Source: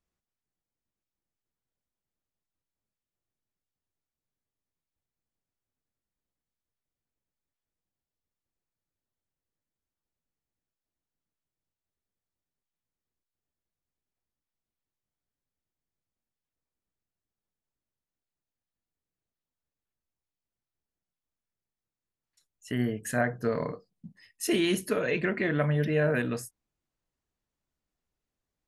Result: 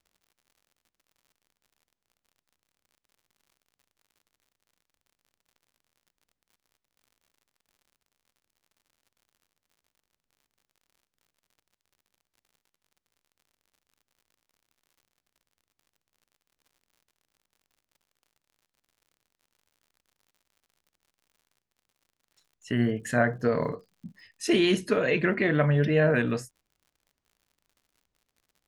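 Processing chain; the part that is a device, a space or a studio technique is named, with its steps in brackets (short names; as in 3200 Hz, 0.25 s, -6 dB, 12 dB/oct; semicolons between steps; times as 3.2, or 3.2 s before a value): lo-fi chain (LPF 6400 Hz 12 dB/oct; wow and flutter; crackle 76/s -55 dBFS); gain +3.5 dB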